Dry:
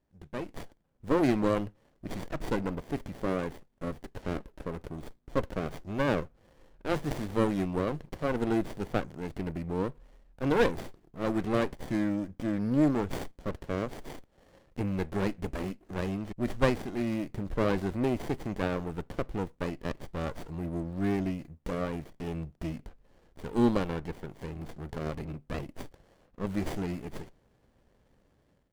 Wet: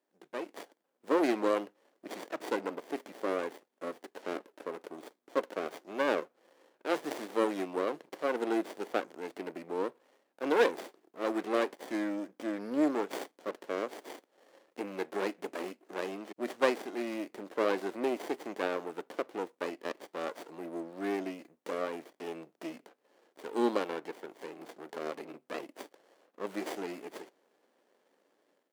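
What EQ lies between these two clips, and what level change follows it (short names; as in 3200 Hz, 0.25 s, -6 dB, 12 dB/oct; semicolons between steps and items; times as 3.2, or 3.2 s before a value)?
HPF 310 Hz 24 dB/oct; 0.0 dB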